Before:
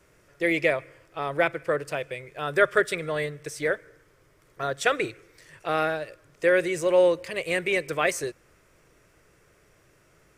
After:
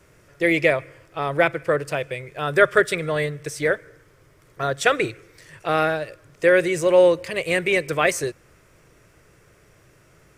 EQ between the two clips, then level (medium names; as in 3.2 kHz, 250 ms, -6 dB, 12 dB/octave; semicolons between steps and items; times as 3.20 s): peaking EQ 110 Hz +4.5 dB 1.4 oct; +4.5 dB